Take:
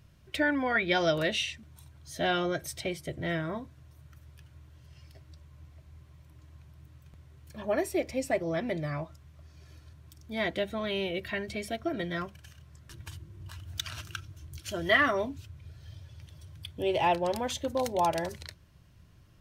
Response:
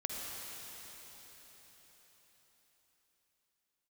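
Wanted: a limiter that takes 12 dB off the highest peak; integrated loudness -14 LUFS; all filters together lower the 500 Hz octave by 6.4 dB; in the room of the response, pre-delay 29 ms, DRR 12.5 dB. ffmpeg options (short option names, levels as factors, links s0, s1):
-filter_complex "[0:a]equalizer=f=500:t=o:g=-9,alimiter=level_in=1.12:limit=0.0631:level=0:latency=1,volume=0.891,asplit=2[s0][s1];[1:a]atrim=start_sample=2205,adelay=29[s2];[s1][s2]afir=irnorm=-1:irlink=0,volume=0.178[s3];[s0][s3]amix=inputs=2:normalize=0,volume=13.3"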